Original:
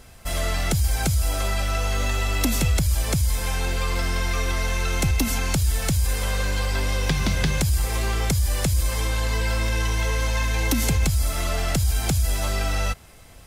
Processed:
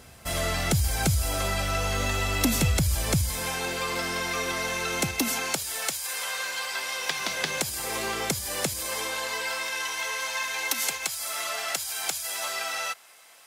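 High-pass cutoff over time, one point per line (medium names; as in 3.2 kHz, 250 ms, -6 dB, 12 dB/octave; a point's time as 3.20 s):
3.15 s 76 Hz
3.59 s 220 Hz
5.09 s 220 Hz
6.10 s 910 Hz
6.92 s 910 Hz
7.91 s 260 Hz
8.60 s 260 Hz
9.72 s 840 Hz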